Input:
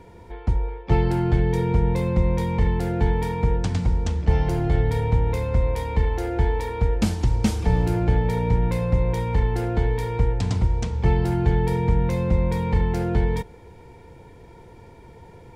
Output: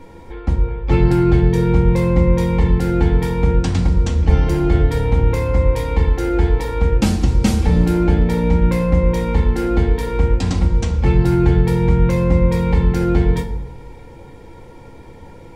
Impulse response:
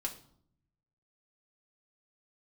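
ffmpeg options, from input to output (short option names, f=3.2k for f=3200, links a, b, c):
-filter_complex "[1:a]atrim=start_sample=2205[a];[0:a][a]afir=irnorm=-1:irlink=0,volume=6dB"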